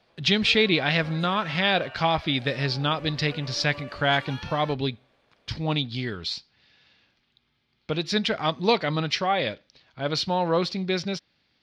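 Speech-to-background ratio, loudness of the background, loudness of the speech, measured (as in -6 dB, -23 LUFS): 17.5 dB, -42.5 LUFS, -25.0 LUFS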